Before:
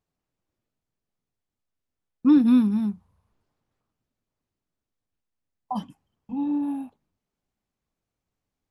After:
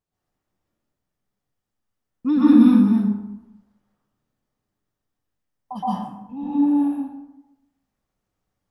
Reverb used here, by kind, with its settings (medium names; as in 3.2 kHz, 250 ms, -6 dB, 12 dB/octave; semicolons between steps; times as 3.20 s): plate-style reverb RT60 0.94 s, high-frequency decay 0.5×, pre-delay 110 ms, DRR -9 dB; trim -4 dB